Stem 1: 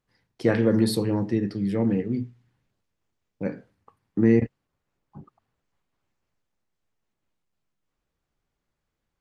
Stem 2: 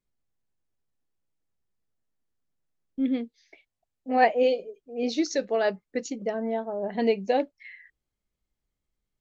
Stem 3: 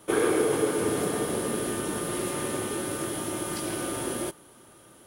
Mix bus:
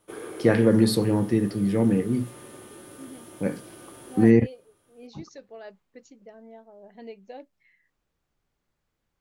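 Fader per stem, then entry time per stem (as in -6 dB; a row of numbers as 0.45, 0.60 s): +2.0, -18.0, -14.5 dB; 0.00, 0.00, 0.00 s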